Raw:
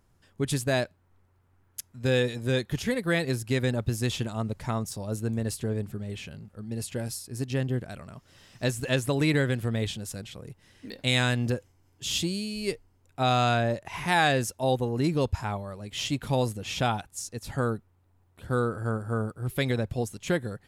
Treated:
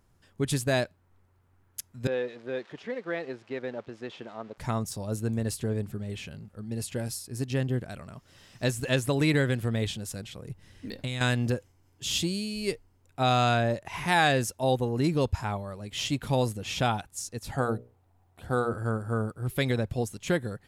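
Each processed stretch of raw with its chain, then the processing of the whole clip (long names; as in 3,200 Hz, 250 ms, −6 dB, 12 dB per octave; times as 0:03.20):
0:02.07–0:04.58: spike at every zero crossing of −25.5 dBFS + high-pass filter 420 Hz + head-to-tape spacing loss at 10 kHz 44 dB
0:10.49–0:11.21: low-shelf EQ 160 Hz +10.5 dB + downward compressor 8 to 1, threshold −28 dBFS
0:17.52–0:18.74: parametric band 740 Hz +9 dB 0.41 octaves + mains-hum notches 60/120/180/240/300/360/420/480/540/600 Hz
whole clip: no processing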